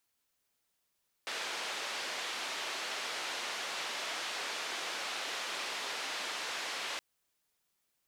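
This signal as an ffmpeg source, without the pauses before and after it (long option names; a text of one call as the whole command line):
ffmpeg -f lavfi -i "anoisesrc=color=white:duration=5.72:sample_rate=44100:seed=1,highpass=frequency=440,lowpass=frequency=4000,volume=-26.1dB" out.wav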